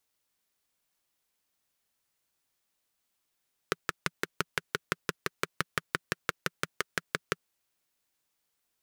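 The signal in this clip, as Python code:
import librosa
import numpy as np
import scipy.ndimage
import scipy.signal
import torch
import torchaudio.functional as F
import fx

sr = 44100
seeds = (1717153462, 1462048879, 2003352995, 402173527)

y = fx.engine_single(sr, seeds[0], length_s=3.72, rpm=700, resonances_hz=(170.0, 400.0, 1400.0))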